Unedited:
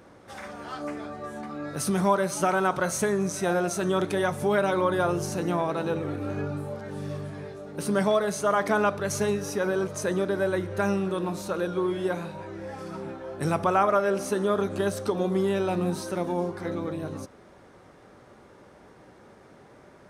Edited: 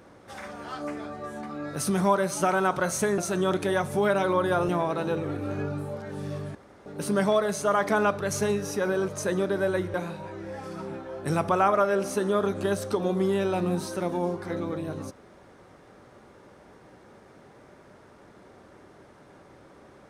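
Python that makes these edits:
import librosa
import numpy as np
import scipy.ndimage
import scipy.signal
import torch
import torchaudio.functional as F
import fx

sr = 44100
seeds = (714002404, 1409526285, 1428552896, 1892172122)

y = fx.edit(x, sr, fx.cut(start_s=3.18, length_s=0.48),
    fx.cut(start_s=5.17, length_s=0.31),
    fx.room_tone_fill(start_s=7.34, length_s=0.31),
    fx.cut(start_s=10.73, length_s=1.36), tone=tone)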